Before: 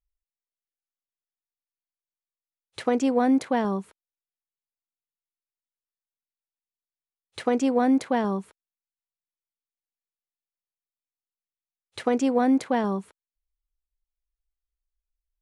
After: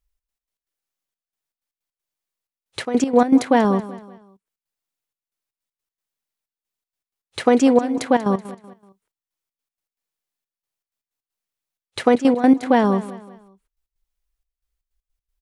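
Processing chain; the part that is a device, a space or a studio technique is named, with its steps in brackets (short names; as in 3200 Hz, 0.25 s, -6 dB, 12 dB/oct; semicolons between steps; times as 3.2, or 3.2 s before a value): trance gate with a delay (step gate "xx.x.x.xxxxx.." 158 bpm -12 dB; feedback echo 0.189 s, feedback 38%, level -16 dB); gain +8.5 dB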